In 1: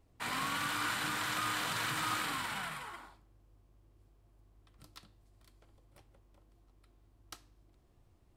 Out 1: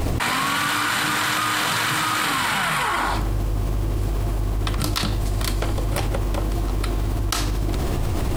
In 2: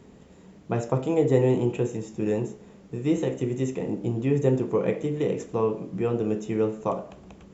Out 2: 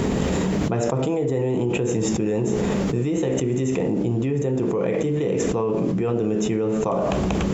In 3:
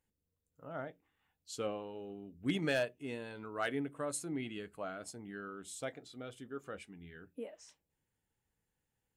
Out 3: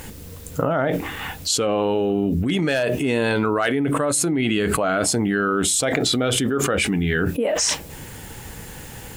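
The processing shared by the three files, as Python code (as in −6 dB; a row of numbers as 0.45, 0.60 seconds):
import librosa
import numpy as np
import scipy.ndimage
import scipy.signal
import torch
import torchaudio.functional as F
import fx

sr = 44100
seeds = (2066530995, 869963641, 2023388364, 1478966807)

y = fx.env_flatten(x, sr, amount_pct=100)
y = y * 10.0 ** (-22 / 20.0) / np.sqrt(np.mean(np.square(y)))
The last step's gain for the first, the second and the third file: +10.5, −5.0, +8.5 decibels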